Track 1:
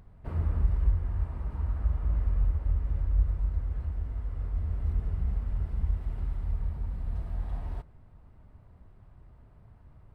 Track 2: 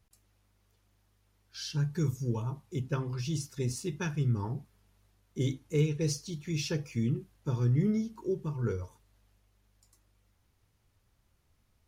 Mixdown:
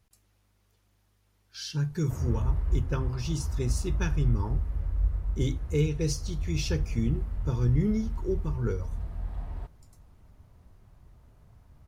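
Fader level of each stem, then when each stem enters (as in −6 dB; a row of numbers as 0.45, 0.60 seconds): −1.5, +1.5 decibels; 1.85, 0.00 seconds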